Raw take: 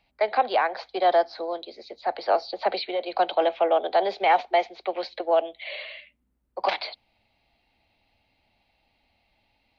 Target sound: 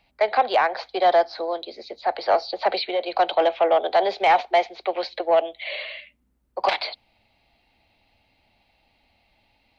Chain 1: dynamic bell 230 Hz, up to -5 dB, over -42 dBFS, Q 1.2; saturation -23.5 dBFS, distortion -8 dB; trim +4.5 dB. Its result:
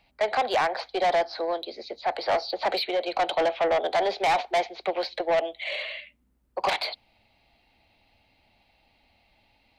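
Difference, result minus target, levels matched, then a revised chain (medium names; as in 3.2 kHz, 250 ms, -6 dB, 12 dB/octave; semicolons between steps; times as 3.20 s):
saturation: distortion +12 dB
dynamic bell 230 Hz, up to -5 dB, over -42 dBFS, Q 1.2; saturation -13 dBFS, distortion -20 dB; trim +4.5 dB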